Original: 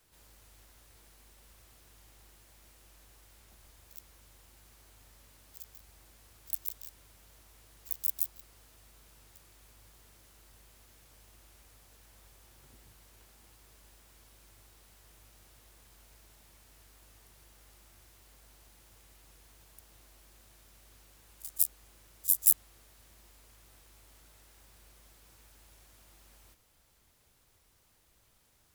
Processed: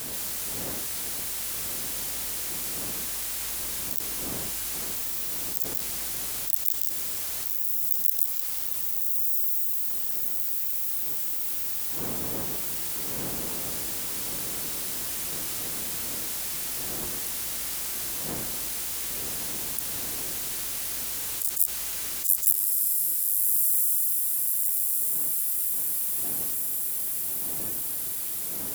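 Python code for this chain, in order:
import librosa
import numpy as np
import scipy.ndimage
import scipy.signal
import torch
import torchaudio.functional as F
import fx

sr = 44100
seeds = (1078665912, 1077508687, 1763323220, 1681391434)

p1 = fx.dmg_wind(x, sr, seeds[0], corner_hz=310.0, level_db=-58.0)
p2 = fx.tilt_eq(p1, sr, slope=3.0)
p3 = p2 + fx.echo_diffused(p2, sr, ms=1256, feedback_pct=42, wet_db=-5.5, dry=0)
p4 = fx.env_flatten(p3, sr, amount_pct=70)
y = p4 * librosa.db_to_amplitude(-11.5)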